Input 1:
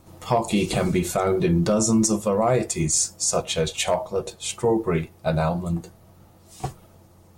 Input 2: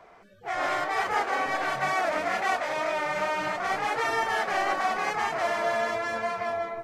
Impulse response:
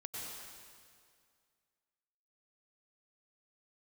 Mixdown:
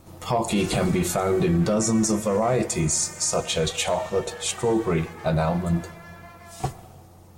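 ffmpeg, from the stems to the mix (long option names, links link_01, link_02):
-filter_complex "[0:a]alimiter=limit=-16.5dB:level=0:latency=1:release=31,volume=1.5dB,asplit=2[link_01][link_02];[link_02]volume=-14.5dB[link_03];[1:a]highpass=830,volume=-14dB[link_04];[2:a]atrim=start_sample=2205[link_05];[link_03][link_05]afir=irnorm=-1:irlink=0[link_06];[link_01][link_04][link_06]amix=inputs=3:normalize=0"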